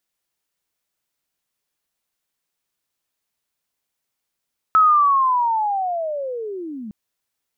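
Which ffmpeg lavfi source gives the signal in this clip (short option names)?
-f lavfi -i "aevalsrc='pow(10,(-9.5-20*t/2.16)/20)*sin(2*PI*(1300*t-1100*t*t/(2*2.16)))':d=2.16:s=44100"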